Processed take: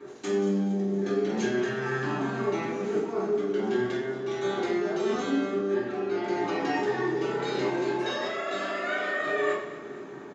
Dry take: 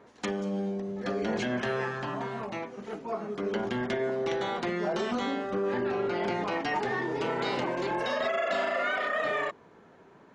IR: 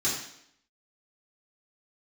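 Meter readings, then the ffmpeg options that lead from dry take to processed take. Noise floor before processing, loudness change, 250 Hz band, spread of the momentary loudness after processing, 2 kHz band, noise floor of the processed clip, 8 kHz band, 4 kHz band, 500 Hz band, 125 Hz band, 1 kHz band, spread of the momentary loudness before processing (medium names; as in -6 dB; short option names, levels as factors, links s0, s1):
-56 dBFS, +2.5 dB, +4.5 dB, 4 LU, +0.5 dB, -41 dBFS, no reading, 0.0 dB, +3.0 dB, +3.0 dB, -1.0 dB, 7 LU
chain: -filter_complex "[0:a]highpass=f=130:p=1,equalizer=f=400:w=2.9:g=7,areverse,acompressor=threshold=0.0178:ratio=10,areverse,aecho=1:1:231|462|693|924|1155|1386:0.158|0.0935|0.0552|0.0326|0.0192|0.0113[s0];[1:a]atrim=start_sample=2205[s1];[s0][s1]afir=irnorm=-1:irlink=0"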